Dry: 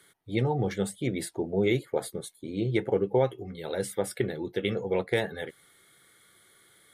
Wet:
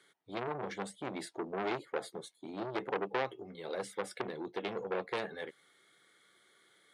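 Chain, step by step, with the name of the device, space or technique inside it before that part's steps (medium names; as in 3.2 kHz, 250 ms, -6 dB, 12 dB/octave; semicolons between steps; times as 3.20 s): public-address speaker with an overloaded transformer (transformer saturation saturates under 1.8 kHz; band-pass 220–6600 Hz); trim -4.5 dB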